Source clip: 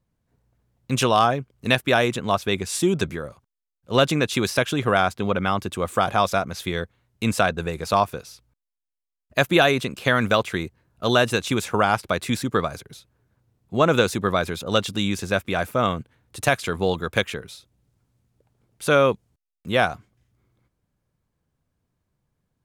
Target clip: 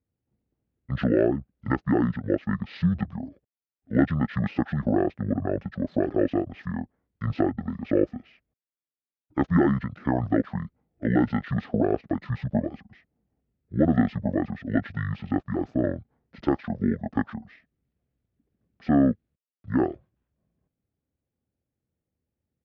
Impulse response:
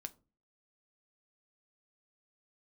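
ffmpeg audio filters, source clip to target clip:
-af "highpass=250,lowpass=3200,equalizer=f=2000:w=1.1:g=-11.5,asetrate=22050,aresample=44100,atempo=2"

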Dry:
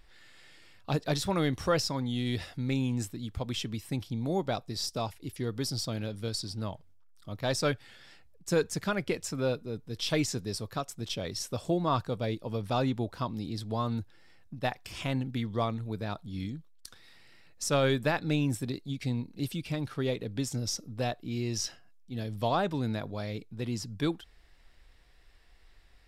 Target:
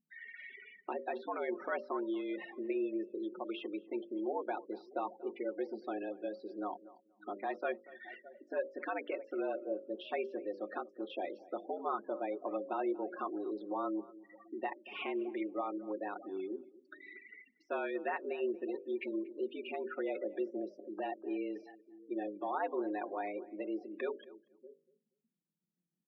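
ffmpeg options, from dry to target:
-filter_complex "[0:a]acompressor=threshold=0.00282:ratio=2.5,asplit=2[s0][s1];[s1]aecho=0:1:613|1226:0.1|0.024[s2];[s0][s2]amix=inputs=2:normalize=0,alimiter=level_in=5.62:limit=0.0631:level=0:latency=1:release=37,volume=0.178,afftfilt=real='re*gte(hypot(re,im),0.00282)':imag='im*gte(hypot(re,im),0.00282)':win_size=1024:overlap=0.75,bandreject=f=50:t=h:w=6,bandreject=f=100:t=h:w=6,bandreject=f=150:t=h:w=6,bandreject=f=200:t=h:w=6,bandreject=f=250:t=h:w=6,bandreject=f=300:t=h:w=6,bandreject=f=350:t=h:w=6,bandreject=f=400:t=h:w=6,bandreject=f=450:t=h:w=6,bandreject=f=500:t=h:w=6,highpass=f=210:t=q:w=0.5412,highpass=f=210:t=q:w=1.307,lowpass=f=2600:t=q:w=0.5176,lowpass=f=2600:t=q:w=0.7071,lowpass=f=2600:t=q:w=1.932,afreqshift=95,aecho=1:1:5.5:0.47,asplit=2[s3][s4];[s4]adelay=236,lowpass=f=1300:p=1,volume=0.119,asplit=2[s5][s6];[s6]adelay=236,lowpass=f=1300:p=1,volume=0.19[s7];[s5][s7]amix=inputs=2:normalize=0[s8];[s3][s8]amix=inputs=2:normalize=0,volume=4.22"

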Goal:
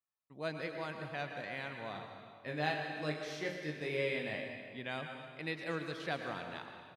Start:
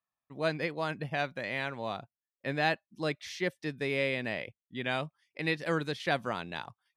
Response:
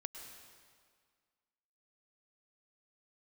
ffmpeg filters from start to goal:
-filter_complex "[0:a]asplit=3[s0][s1][s2];[s0]afade=t=out:st=1.94:d=0.02[s3];[s1]aecho=1:1:20|46|79.8|123.7|180.9:0.631|0.398|0.251|0.158|0.1,afade=t=in:st=1.94:d=0.02,afade=t=out:st=4.4:d=0.02[s4];[s2]afade=t=in:st=4.4:d=0.02[s5];[s3][s4][s5]amix=inputs=3:normalize=0[s6];[1:a]atrim=start_sample=2205[s7];[s6][s7]afir=irnorm=-1:irlink=0,volume=0.596"

